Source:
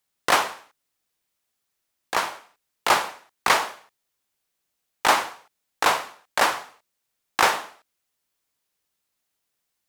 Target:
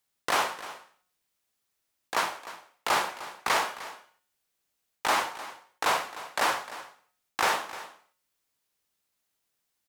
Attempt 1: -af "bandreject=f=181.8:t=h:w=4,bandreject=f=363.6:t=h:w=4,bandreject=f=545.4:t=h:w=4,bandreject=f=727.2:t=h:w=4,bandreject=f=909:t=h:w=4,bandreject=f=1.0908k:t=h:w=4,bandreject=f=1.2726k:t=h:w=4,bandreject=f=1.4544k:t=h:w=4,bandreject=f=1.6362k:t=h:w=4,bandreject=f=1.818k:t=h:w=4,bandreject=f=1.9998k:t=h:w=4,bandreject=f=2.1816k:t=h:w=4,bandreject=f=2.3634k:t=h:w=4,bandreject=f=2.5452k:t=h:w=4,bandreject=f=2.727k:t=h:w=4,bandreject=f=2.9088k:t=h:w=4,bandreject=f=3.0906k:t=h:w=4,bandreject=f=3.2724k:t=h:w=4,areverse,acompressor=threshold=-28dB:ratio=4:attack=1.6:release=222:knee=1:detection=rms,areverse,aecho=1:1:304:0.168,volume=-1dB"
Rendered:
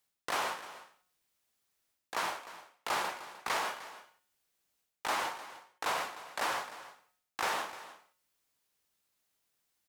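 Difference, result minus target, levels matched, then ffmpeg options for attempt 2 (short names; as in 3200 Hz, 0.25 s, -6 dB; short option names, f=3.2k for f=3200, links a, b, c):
compressor: peak gain reduction +8 dB
-af "bandreject=f=181.8:t=h:w=4,bandreject=f=363.6:t=h:w=4,bandreject=f=545.4:t=h:w=4,bandreject=f=727.2:t=h:w=4,bandreject=f=909:t=h:w=4,bandreject=f=1.0908k:t=h:w=4,bandreject=f=1.2726k:t=h:w=4,bandreject=f=1.4544k:t=h:w=4,bandreject=f=1.6362k:t=h:w=4,bandreject=f=1.818k:t=h:w=4,bandreject=f=1.9998k:t=h:w=4,bandreject=f=2.1816k:t=h:w=4,bandreject=f=2.3634k:t=h:w=4,bandreject=f=2.5452k:t=h:w=4,bandreject=f=2.727k:t=h:w=4,bandreject=f=2.9088k:t=h:w=4,bandreject=f=3.0906k:t=h:w=4,bandreject=f=3.2724k:t=h:w=4,areverse,acompressor=threshold=-17.5dB:ratio=4:attack=1.6:release=222:knee=1:detection=rms,areverse,aecho=1:1:304:0.168,volume=-1dB"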